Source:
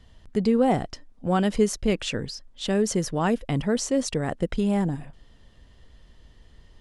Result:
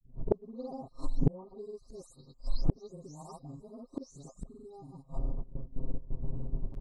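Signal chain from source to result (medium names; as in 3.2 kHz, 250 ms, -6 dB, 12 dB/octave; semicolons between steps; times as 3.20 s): delay that grows with frequency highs late, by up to 351 ms; gate with hold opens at -42 dBFS; FFT band-reject 1.3–3.8 kHz; level-controlled noise filter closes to 350 Hz, open at -22.5 dBFS; comb 7.5 ms, depth 96%; in parallel at -3 dB: compression, threshold -39 dBFS, peak gain reduction 24.5 dB; on the sum: granulator 100 ms, grains 20 per s, pitch spread up and down by 0 st; inverted gate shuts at -26 dBFS, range -39 dB; pre-echo 37 ms -17 dB; loudspeaker Doppler distortion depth 0.58 ms; trim +14 dB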